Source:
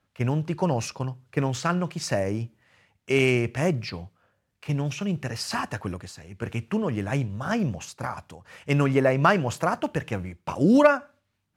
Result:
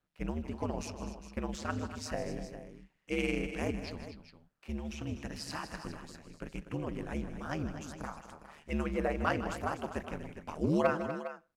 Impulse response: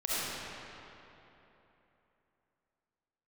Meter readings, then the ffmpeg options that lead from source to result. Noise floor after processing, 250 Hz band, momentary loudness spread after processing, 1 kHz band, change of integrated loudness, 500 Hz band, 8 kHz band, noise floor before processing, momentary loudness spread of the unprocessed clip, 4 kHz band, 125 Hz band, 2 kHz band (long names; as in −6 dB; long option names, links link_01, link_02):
−73 dBFS, −10.5 dB, 16 LU, −10.5 dB, −11.5 dB, −11.0 dB, −11.0 dB, −75 dBFS, 14 LU, −10.5 dB, −13.5 dB, −11.0 dB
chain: -af "aeval=exprs='val(0)*sin(2*PI*75*n/s)':channel_layout=same,aecho=1:1:156|245|407:0.224|0.266|0.237,volume=-8.5dB"